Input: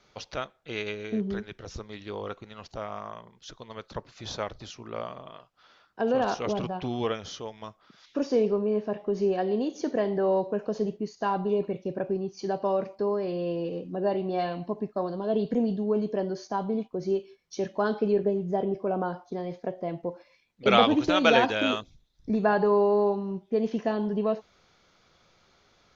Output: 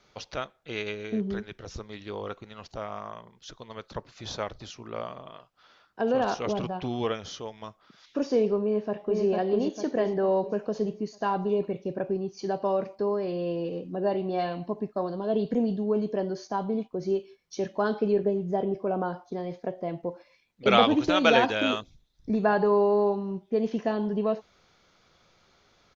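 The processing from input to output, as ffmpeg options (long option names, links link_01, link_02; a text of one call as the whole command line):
ffmpeg -i in.wav -filter_complex "[0:a]asplit=2[link_01][link_02];[link_02]afade=type=in:start_time=8.64:duration=0.01,afade=type=out:start_time=9.23:duration=0.01,aecho=0:1:450|900|1350|1800|2250|2700|3150:0.749894|0.374947|0.187474|0.0937368|0.0468684|0.0234342|0.0117171[link_03];[link_01][link_03]amix=inputs=2:normalize=0" out.wav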